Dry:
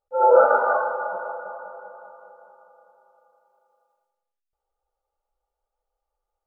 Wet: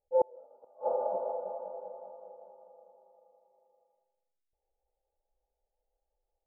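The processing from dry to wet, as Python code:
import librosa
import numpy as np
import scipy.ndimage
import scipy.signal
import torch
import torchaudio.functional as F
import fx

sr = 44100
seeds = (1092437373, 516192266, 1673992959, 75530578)

y = fx.gate_flip(x, sr, shuts_db=-11.0, range_db=-37)
y = scipy.signal.sosfilt(scipy.signal.cheby2(4, 40, 1500.0, 'lowpass', fs=sr, output='sos'), y)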